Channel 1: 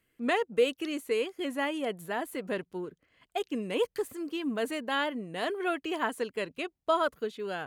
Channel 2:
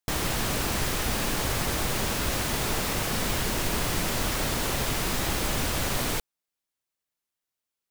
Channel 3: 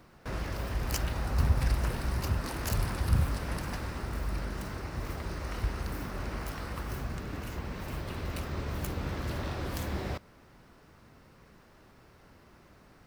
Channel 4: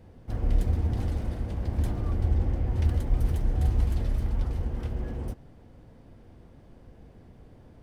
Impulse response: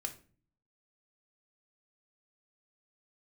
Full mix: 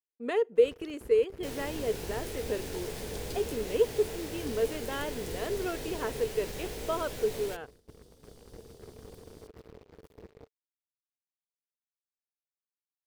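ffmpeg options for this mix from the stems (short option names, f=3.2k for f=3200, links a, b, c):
-filter_complex "[0:a]volume=-8.5dB,asplit=3[a][b][c];[b]volume=-18.5dB[d];[1:a]equalizer=f=1.2k:t=o:w=0.43:g=-9,flanger=delay=16:depth=6.6:speed=2.4,aeval=exprs='val(0)+0.00224*(sin(2*PI*60*n/s)+sin(2*PI*2*60*n/s)/2+sin(2*PI*3*60*n/s)/3+sin(2*PI*4*60*n/s)/4+sin(2*PI*5*60*n/s)/5)':c=same,adelay=1350,volume=-11dB[e];[2:a]alimiter=level_in=2dB:limit=-24dB:level=0:latency=1:release=95,volume=-2dB,acrossover=split=420[f][g];[g]acompressor=threshold=-58dB:ratio=1.5[h];[f][h]amix=inputs=2:normalize=0,acrusher=bits=4:mix=0:aa=0.5,adelay=300,volume=-14.5dB[i];[3:a]asoftclip=type=tanh:threshold=-30dB,aexciter=amount=12.5:drive=4.3:freq=3.3k,adelay=1650,volume=-5.5dB[j];[c]apad=whole_len=417735[k];[j][k]sidechaincompress=threshold=-45dB:ratio=8:attack=16:release=1180[l];[4:a]atrim=start_sample=2205[m];[d][m]afir=irnorm=-1:irlink=0[n];[a][e][i][l][n]amix=inputs=5:normalize=0,agate=range=-33dB:threshold=-51dB:ratio=3:detection=peak,equalizer=f=440:t=o:w=0.44:g=14"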